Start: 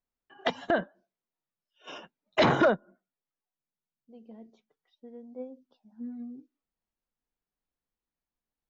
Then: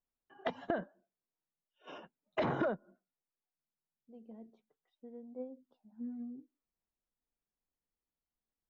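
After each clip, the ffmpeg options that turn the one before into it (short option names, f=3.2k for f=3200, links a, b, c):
-af "acompressor=threshold=-26dB:ratio=5,lowpass=f=1.3k:p=1,volume=-3dB"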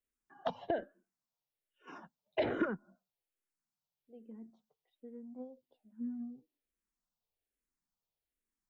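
-filter_complex "[0:a]asplit=2[a][b];[b]afreqshift=-1.2[c];[a][c]amix=inputs=2:normalize=1,volume=2.5dB"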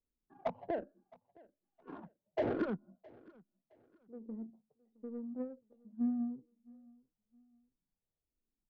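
-af "alimiter=level_in=6dB:limit=-24dB:level=0:latency=1:release=267,volume=-6dB,adynamicsmooth=sensitivity=4:basefreq=500,aecho=1:1:665|1330:0.0631|0.0202,volume=7dB"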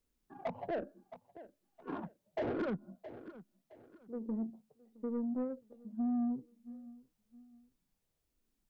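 -af "alimiter=level_in=10.5dB:limit=-24dB:level=0:latency=1:release=93,volume=-10.5dB,asoftclip=type=tanh:threshold=-37.5dB,volume=8.5dB"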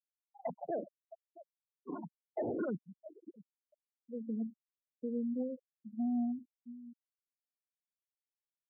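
-af "aecho=1:1:123:0.106,afftfilt=real='re*gte(hypot(re,im),0.0251)':imag='im*gte(hypot(re,im),0.0251)':win_size=1024:overlap=0.75,highpass=110"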